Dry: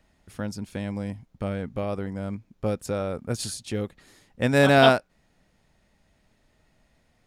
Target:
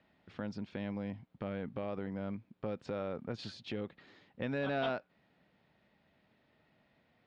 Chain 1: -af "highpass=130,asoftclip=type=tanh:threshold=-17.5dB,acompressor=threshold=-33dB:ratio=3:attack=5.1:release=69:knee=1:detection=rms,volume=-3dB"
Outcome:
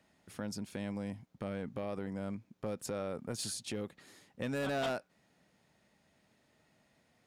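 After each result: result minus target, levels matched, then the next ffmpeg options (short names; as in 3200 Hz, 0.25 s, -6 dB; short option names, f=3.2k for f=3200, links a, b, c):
soft clip: distortion +7 dB; 4000 Hz band +3.0 dB
-af "highpass=130,asoftclip=type=tanh:threshold=-11dB,acompressor=threshold=-33dB:ratio=3:attack=5.1:release=69:knee=1:detection=rms,volume=-3dB"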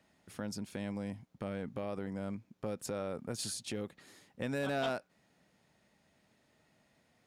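4000 Hz band +3.0 dB
-af "highpass=130,asoftclip=type=tanh:threshold=-11dB,acompressor=threshold=-33dB:ratio=3:attack=5.1:release=69:knee=1:detection=rms,lowpass=f=3.9k:w=0.5412,lowpass=f=3.9k:w=1.3066,volume=-3dB"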